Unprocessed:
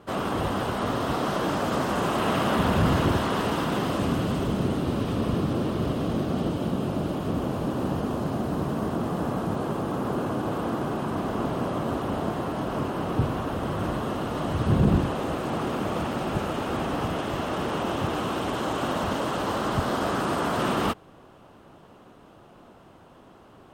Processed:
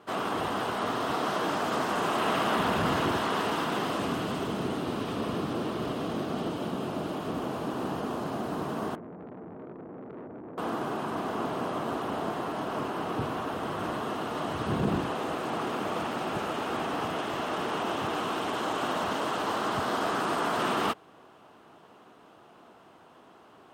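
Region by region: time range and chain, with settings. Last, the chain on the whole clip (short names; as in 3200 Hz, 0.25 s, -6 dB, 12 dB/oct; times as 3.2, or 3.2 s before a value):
8.95–10.58 inverse Chebyshev low-pass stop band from 1200 Hz + resonator 89 Hz, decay 0.21 s, mix 50% + tube stage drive 34 dB, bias 0.4
whole clip: HPF 420 Hz 6 dB/oct; high shelf 6700 Hz -4 dB; notch 550 Hz, Q 12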